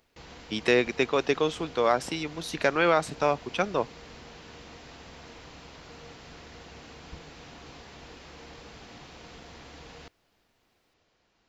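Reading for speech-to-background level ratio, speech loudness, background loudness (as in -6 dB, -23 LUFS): 20.5 dB, -26.5 LUFS, -47.0 LUFS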